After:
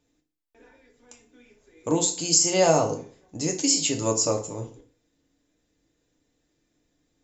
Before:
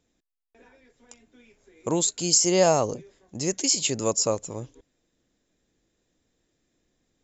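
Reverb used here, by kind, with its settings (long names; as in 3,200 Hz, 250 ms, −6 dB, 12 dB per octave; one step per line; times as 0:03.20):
feedback delay network reverb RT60 0.45 s, low-frequency decay 1.05×, high-frequency decay 0.85×, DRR 2 dB
level −1.5 dB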